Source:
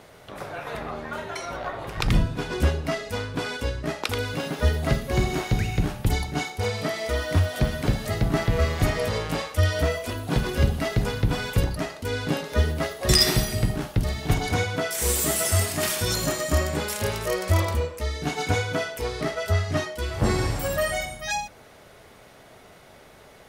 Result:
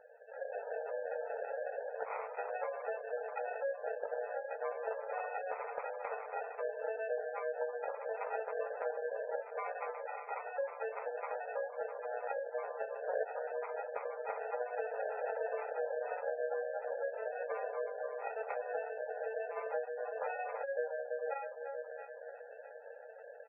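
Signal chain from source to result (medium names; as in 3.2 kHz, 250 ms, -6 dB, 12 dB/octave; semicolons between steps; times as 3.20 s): 9.58–10.58 s: static phaser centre 1.5 kHz, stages 4; 19.04–19.57 s: hard clipper -28.5 dBFS, distortion -21 dB; comb 3.4 ms, depth 39%; feedback echo behind a low-pass 325 ms, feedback 59%, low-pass 750 Hz, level -10 dB; sample-and-hold 40×; level rider gain up to 8 dB; dynamic bell 1.9 kHz, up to -3 dB, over -36 dBFS, Q 0.72; brick-wall FIR band-pass 430–2700 Hz; spectral gate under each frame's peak -15 dB strong; compression 3:1, threshold -30 dBFS, peak gain reduction 13.5 dB; flange 0.34 Hz, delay 7.9 ms, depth 5.8 ms, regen -47%; trim -3 dB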